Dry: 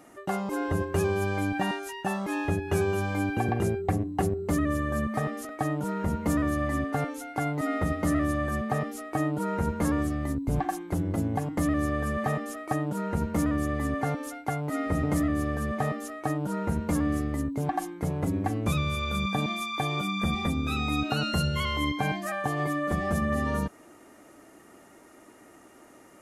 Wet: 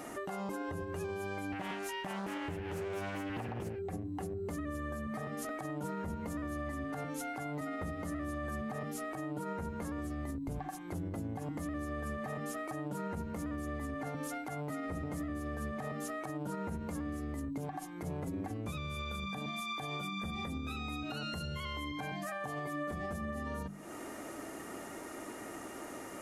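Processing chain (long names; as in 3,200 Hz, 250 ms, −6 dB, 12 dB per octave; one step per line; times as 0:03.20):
mains-hum notches 50/100/150/200/250/300/350 Hz
downward compressor 10 to 1, threshold −42 dBFS, peak gain reduction 20 dB
brickwall limiter −39 dBFS, peak gain reduction 10 dB
0:01.52–0:03.79: highs frequency-modulated by the lows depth 0.44 ms
level +8.5 dB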